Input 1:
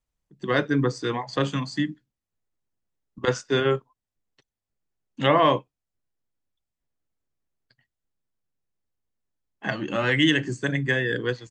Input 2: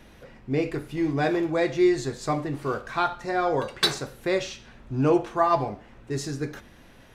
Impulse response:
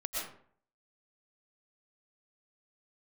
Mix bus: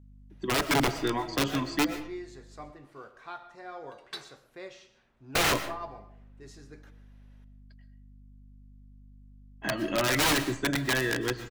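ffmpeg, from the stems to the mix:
-filter_complex "[0:a]aecho=1:1:3.1:0.47,aeval=exprs='(mod(5.96*val(0)+1,2)-1)/5.96':c=same,aeval=exprs='val(0)+0.00355*(sin(2*PI*50*n/s)+sin(2*PI*2*50*n/s)/2+sin(2*PI*3*50*n/s)/3+sin(2*PI*4*50*n/s)/4+sin(2*PI*5*50*n/s)/5)':c=same,volume=-4dB,asplit=3[a][b][c];[a]atrim=end=2.72,asetpts=PTS-STARTPTS,afade=t=out:st=2.716:d=0.004:c=hsin[d];[b]atrim=start=2.72:end=5.35,asetpts=PTS-STARTPTS,volume=0[e];[c]atrim=start=5.35,asetpts=PTS-STARTPTS,afade=t=in:d=0.004:c=hsin[f];[d][e][f]concat=n=3:v=0:a=1,asplit=2[g][h];[h]volume=-12dB[i];[1:a]lowshelf=f=320:g=-9,adelay=300,volume=-17dB,asplit=2[j][k];[k]volume=-14.5dB[l];[2:a]atrim=start_sample=2205[m];[i][l]amix=inputs=2:normalize=0[n];[n][m]afir=irnorm=-1:irlink=0[o];[g][j][o]amix=inputs=3:normalize=0,highshelf=f=5.3k:g=-5"

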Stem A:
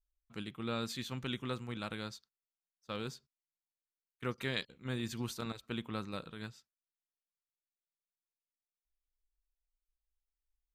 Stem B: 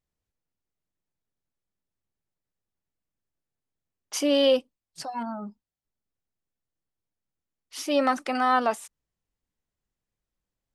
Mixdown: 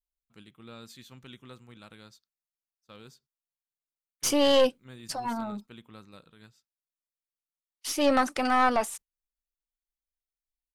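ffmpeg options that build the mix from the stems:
-filter_complex "[0:a]volume=-7.5dB[a];[1:a]agate=range=-30dB:threshold=-45dB:ratio=16:detection=peak,adelay=100,volume=2.5dB[b];[a][b]amix=inputs=2:normalize=0,highshelf=f=6.9k:g=7,aeval=exprs='(tanh(5.01*val(0)+0.5)-tanh(0.5))/5.01':c=same"

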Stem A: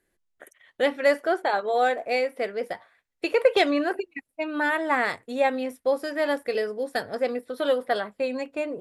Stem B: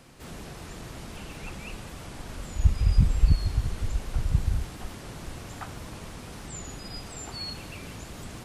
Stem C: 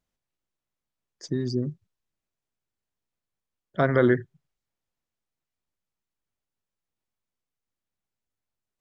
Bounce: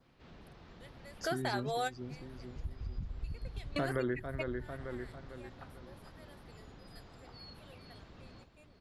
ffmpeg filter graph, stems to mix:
-filter_complex "[0:a]crystalizer=i=6.5:c=0,volume=-7dB[a];[1:a]lowpass=f=4.4k:w=0.5412,lowpass=f=4.4k:w=1.3066,adynamicequalizer=threshold=0.001:dfrequency=2600:dqfactor=2.1:tfrequency=2600:tqfactor=2.1:attack=5:release=100:ratio=0.375:range=2.5:mode=cutabove:tftype=bell,acompressor=threshold=-29dB:ratio=1.5,volume=-13.5dB,asplit=2[b][c];[c]volume=-9dB[d];[2:a]volume=-3dB,asplit=3[e][f][g];[f]volume=-12dB[h];[g]apad=whole_len=388478[i];[a][i]sidechaingate=range=-31dB:threshold=-55dB:ratio=16:detection=peak[j];[d][h]amix=inputs=2:normalize=0,aecho=0:1:448|896|1344|1792|2240|2688:1|0.41|0.168|0.0689|0.0283|0.0116[k];[j][b][e][k]amix=inputs=4:normalize=0,acompressor=threshold=-34dB:ratio=3"

